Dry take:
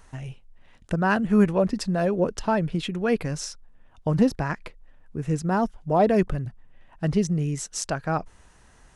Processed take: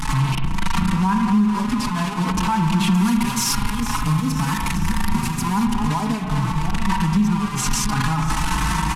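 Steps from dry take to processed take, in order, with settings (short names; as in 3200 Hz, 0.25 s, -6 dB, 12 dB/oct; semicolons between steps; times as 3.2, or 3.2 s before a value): delta modulation 64 kbps, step -20 dBFS; EQ curve 110 Hz 0 dB, 210 Hz +10 dB, 590 Hz -21 dB, 950 Hz +11 dB, 1600 Hz -2 dB, 2500 Hz +1 dB, 3600 Hz -2 dB; AGC; echo with dull and thin repeats by turns 0.23 s, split 860 Hz, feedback 71%, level -10.5 dB; compressor, threshold -16 dBFS, peak gain reduction 11 dB; high shelf 8000 Hz -3.5 dB, from 2.94 s +8 dB, from 5.65 s -2.5 dB; spring tank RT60 1.4 s, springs 38 ms, chirp 30 ms, DRR 6 dB; maximiser +16 dB; endless flanger 4.2 ms +0.48 Hz; gain -8.5 dB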